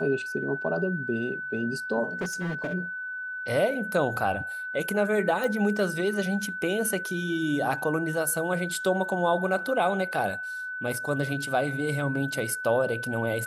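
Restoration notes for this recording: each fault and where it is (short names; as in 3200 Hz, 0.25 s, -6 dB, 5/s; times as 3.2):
tone 1500 Hz -32 dBFS
2.21–2.74 clipped -26.5 dBFS
5.44 pop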